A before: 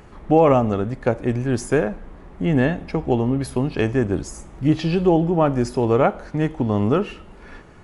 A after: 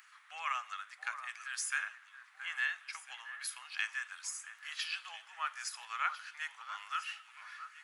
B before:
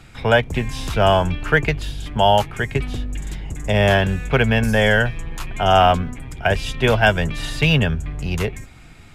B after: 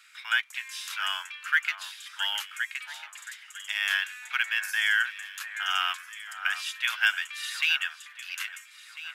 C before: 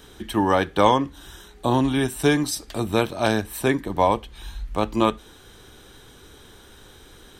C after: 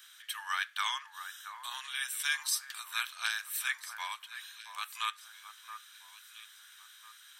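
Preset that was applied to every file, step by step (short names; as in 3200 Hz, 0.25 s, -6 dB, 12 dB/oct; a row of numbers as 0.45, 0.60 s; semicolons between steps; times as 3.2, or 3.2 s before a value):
steep high-pass 1300 Hz 36 dB/oct; high shelf 11000 Hz +5.5 dB; on a send: echo with dull and thin repeats by turns 0.674 s, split 1800 Hz, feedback 53%, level -10 dB; on the sum: gain -4.5 dB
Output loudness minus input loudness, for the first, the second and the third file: -19.0, -9.5, -13.0 LU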